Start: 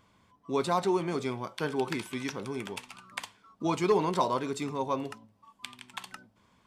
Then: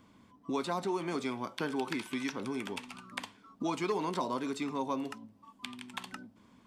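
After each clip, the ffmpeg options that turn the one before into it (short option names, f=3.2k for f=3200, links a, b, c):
-filter_complex "[0:a]equalizer=f=260:w=1.6:g=11.5,acrossover=split=620|4800[a][b][c];[a]acompressor=threshold=-37dB:ratio=4[d];[b]acompressor=threshold=-34dB:ratio=4[e];[c]acompressor=threshold=-51dB:ratio=4[f];[d][e][f]amix=inputs=3:normalize=0"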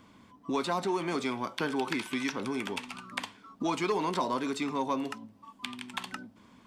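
-filter_complex "[0:a]equalizer=f=2.2k:w=0.3:g=3,asplit=2[a][b];[b]asoftclip=type=tanh:threshold=-31dB,volume=-8dB[c];[a][c]amix=inputs=2:normalize=0"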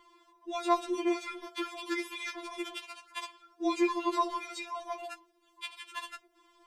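-af "afftfilt=real='re*4*eq(mod(b,16),0)':imag='im*4*eq(mod(b,16),0)':win_size=2048:overlap=0.75"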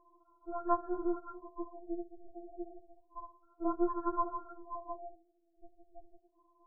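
-af "aeval=exprs='if(lt(val(0),0),0.251*val(0),val(0))':c=same,afftfilt=real='re*lt(b*sr/1024,760*pow(1700/760,0.5+0.5*sin(2*PI*0.31*pts/sr)))':imag='im*lt(b*sr/1024,760*pow(1700/760,0.5+0.5*sin(2*PI*0.31*pts/sr)))':win_size=1024:overlap=0.75"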